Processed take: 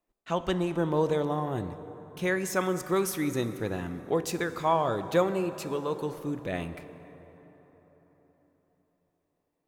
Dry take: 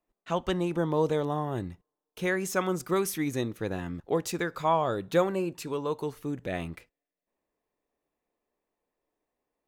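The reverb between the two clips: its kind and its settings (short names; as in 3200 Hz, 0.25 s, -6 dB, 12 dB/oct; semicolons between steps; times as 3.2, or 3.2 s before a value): plate-style reverb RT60 4.4 s, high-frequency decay 0.5×, DRR 11 dB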